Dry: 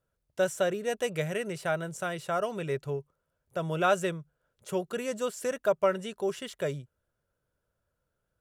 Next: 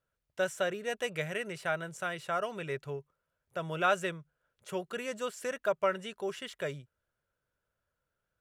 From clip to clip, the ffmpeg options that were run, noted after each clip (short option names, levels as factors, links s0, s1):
-af "equalizer=f=2000:w=0.56:g=7.5,volume=0.473"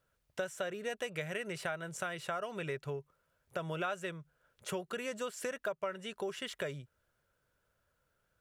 -af "acompressor=threshold=0.00708:ratio=4,volume=2.11"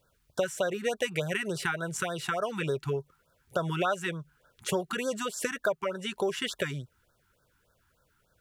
-af "afftfilt=real='re*(1-between(b*sr/1024,500*pow(2500/500,0.5+0.5*sin(2*PI*3.4*pts/sr))/1.41,500*pow(2500/500,0.5+0.5*sin(2*PI*3.4*pts/sr))*1.41))':imag='im*(1-between(b*sr/1024,500*pow(2500/500,0.5+0.5*sin(2*PI*3.4*pts/sr))/1.41,500*pow(2500/500,0.5+0.5*sin(2*PI*3.4*pts/sr))*1.41))':win_size=1024:overlap=0.75,volume=2.82"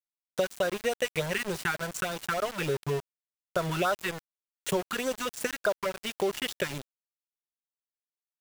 -af "aeval=exprs='val(0)*gte(abs(val(0)),0.0224)':c=same,volume=1.12"